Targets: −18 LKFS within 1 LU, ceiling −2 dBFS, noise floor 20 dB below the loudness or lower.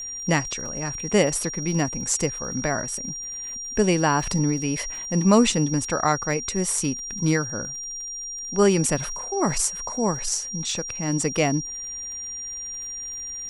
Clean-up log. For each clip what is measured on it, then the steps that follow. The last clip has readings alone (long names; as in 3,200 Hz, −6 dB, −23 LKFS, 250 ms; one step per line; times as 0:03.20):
crackle rate 48 per second; interfering tone 5,700 Hz; level of the tone −31 dBFS; integrated loudness −24.0 LKFS; sample peak −4.5 dBFS; target loudness −18.0 LKFS
→ click removal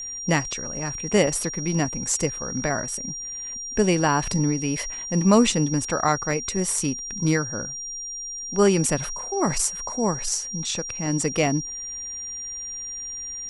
crackle rate 0.15 per second; interfering tone 5,700 Hz; level of the tone −31 dBFS
→ notch filter 5,700 Hz, Q 30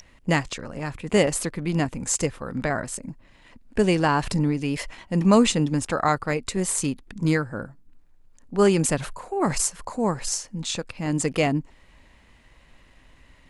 interfering tone none found; integrated loudness −24.5 LKFS; sample peak −4.5 dBFS; target loudness −18.0 LKFS
→ level +6.5 dB
brickwall limiter −2 dBFS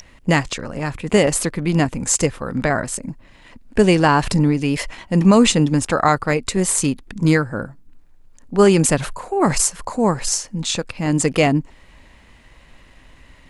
integrated loudness −18.5 LKFS; sample peak −2.0 dBFS; background noise floor −48 dBFS